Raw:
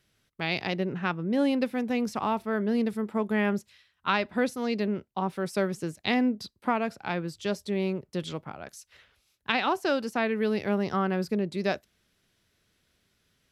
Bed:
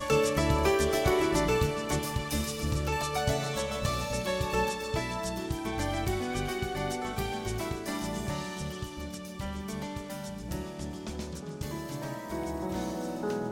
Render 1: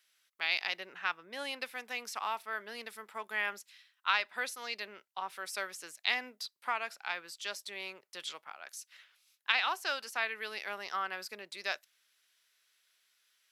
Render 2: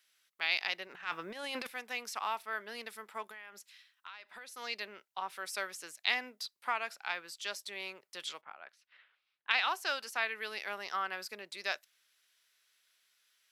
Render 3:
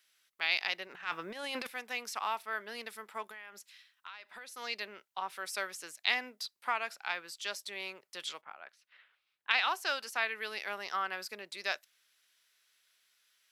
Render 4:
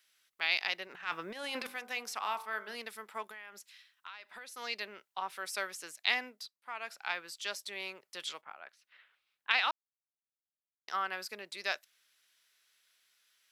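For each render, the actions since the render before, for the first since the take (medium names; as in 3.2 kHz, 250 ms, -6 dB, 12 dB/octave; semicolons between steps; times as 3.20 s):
high-pass 1.3 kHz 12 dB/octave; treble shelf 9.6 kHz +4 dB
0.87–1.67 s: transient shaper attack -10 dB, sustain +12 dB; 3.25–4.56 s: compression, threshold -46 dBFS; 8.41–9.51 s: distance through air 400 m
trim +1 dB
1.33–2.75 s: de-hum 49.64 Hz, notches 31; 6.23–7.01 s: dip -17.5 dB, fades 0.37 s; 9.71–10.88 s: mute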